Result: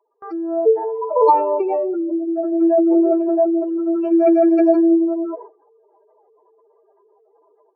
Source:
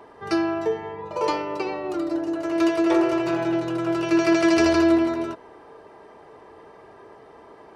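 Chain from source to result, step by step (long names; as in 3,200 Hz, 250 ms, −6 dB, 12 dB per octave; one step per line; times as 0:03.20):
expanding power law on the bin magnitudes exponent 3.3
high-pass filter 420 Hz 24 dB per octave
noise gate with hold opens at −36 dBFS
automatic gain control gain up to 13.5 dB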